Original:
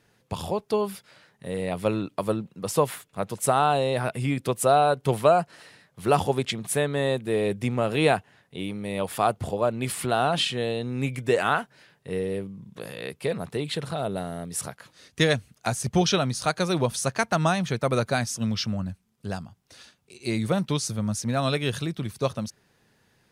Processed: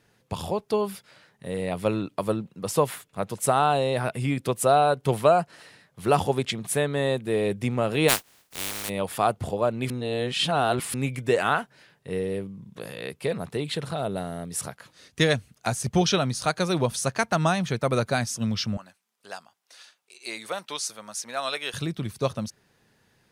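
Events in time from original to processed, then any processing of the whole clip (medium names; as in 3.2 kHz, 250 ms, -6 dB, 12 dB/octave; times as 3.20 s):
8.08–8.88 s: spectral contrast reduction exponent 0.16
9.90–10.94 s: reverse
18.77–21.74 s: high-pass 710 Hz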